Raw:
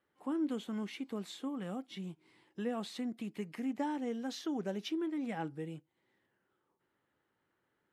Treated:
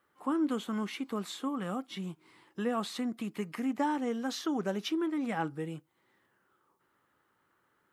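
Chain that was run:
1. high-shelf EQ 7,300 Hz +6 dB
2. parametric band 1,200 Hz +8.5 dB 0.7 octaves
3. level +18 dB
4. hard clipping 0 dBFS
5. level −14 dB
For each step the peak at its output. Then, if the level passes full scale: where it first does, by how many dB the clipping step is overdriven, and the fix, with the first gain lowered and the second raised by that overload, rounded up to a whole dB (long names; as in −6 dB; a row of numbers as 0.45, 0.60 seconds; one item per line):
−24.5, −23.0, −5.0, −5.0, −19.0 dBFS
no step passes full scale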